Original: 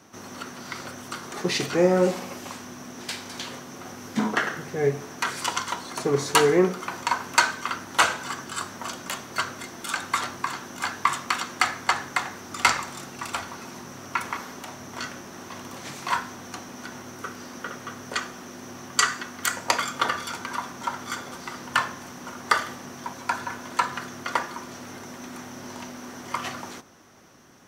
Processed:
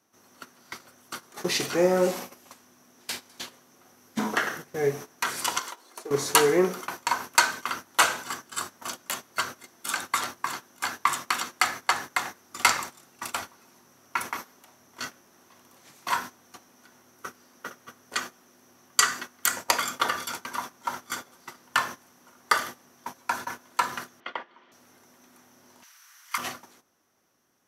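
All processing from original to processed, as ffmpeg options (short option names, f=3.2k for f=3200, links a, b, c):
-filter_complex "[0:a]asettb=1/sr,asplit=3[a][b][c];[a]atrim=end=5.594[d];[b]atrim=start=5.59:end=6.11,asetpts=PTS-STARTPTS,afade=t=in:d=0.004:c=qsin,afade=t=out:st=0.516:d=0.004:c=qsin,lowshelf=f=240:t=q:w=1.5:g=-11.5,acompressor=threshold=-30dB:ratio=8:attack=3.2:release=140:knee=1:detection=peak,aeval=exprs='sgn(val(0))*max(abs(val(0))-0.00126,0)':c=same[e];[c]atrim=start=6.106[f];[d][e]acrossfade=d=0.004:c1=hsin:c2=qsin[g];[g][f]acrossfade=d=0.004:c1=qsin:c2=hsin,asettb=1/sr,asplit=3[h][i][j];[h]atrim=end=24.204[k];[i]atrim=start=24.2:end=24.72,asetpts=PTS-STARTPTS,afade=t=in:d=0.004:c=qsin,afade=t=out:st=0.516:d=0.004:c=qsin,acrossover=split=280|720[l][m][n];[l]acompressor=threshold=-49dB:ratio=4[o];[m]acompressor=threshold=-36dB:ratio=4[p];[n]acompressor=threshold=-34dB:ratio=4[q];[o][p][q]amix=inputs=3:normalize=0,highpass=f=130:w=0.5412,highpass=f=130:w=1.3066,equalizer=f=140:t=q:w=4:g=-8,equalizer=f=250:t=q:w=4:g=-3,equalizer=f=2k:t=q:w=4:g=5,equalizer=f=3.1k:t=q:w=4:g=8,lowpass=f=3.8k:w=0.5412,lowpass=f=3.8k:w=1.3066[r];[j]atrim=start=24.716[s];[k][r]acrossfade=d=0.004:c1=hsin:c2=qsin[t];[t][s]acrossfade=d=0.004:c1=qsin:c2=hsin,asettb=1/sr,asplit=3[u][v][w];[u]atrim=end=25.834[x];[v]atrim=start=25.83:end=26.38,asetpts=PTS-STARTPTS,afade=t=in:d=0.004:c=qsin,afade=t=out:st=0.546:d=0.004:c=qsin,highpass=f=1.3k:w=0.5412,highpass=f=1.3k:w=1.3066,acontrast=44,asplit=2[y][z];[z]adelay=45,volume=-5dB[aa];[y][aa]amix=inputs=2:normalize=0,atrim=end_sample=24255[ab];[w]atrim=start=26.376[ac];[x][ab]acrossfade=d=0.004:c1=hsin:c2=qsin[ad];[ad][ac]acrossfade=d=0.004:c1=qsin:c2=hsin,equalizer=f=12k:t=o:w=0.5:g=10,agate=range=-16dB:threshold=-33dB:ratio=16:detection=peak,bass=f=250:g=-5,treble=f=4k:g=2,volume=-1.5dB"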